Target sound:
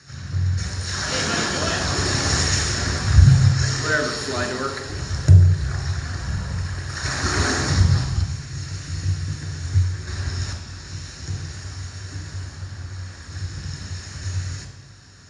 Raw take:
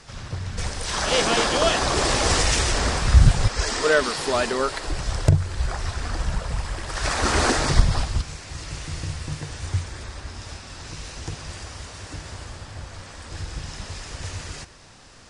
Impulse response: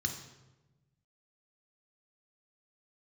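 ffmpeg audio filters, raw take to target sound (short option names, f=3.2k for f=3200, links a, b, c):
-filter_complex "[0:a]asettb=1/sr,asplit=3[a][b][c];[a]atrim=end=10.074[d];[b]atrim=start=10.07:end=10.53,asetpts=PTS-STARTPTS,afade=t=in:d=0.004:c=qsin,afade=t=out:st=0.456:d=0.004:c=qsin,acontrast=81[e];[c]atrim=start=10.526[f];[d][e]acrossfade=d=0.004:c1=hsin:c2=qsin[g];[g][f]acrossfade=d=0.004:c1=qsin:c2=hsin[h];[1:a]atrim=start_sample=2205[i];[h][i]afir=irnorm=-1:irlink=0,volume=-5dB"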